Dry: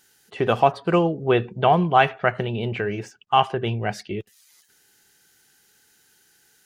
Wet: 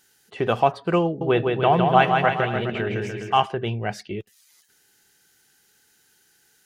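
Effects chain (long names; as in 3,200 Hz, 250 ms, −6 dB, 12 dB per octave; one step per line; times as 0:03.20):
0:01.05–0:03.46: bouncing-ball delay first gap 160 ms, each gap 0.85×, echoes 5
level −1.5 dB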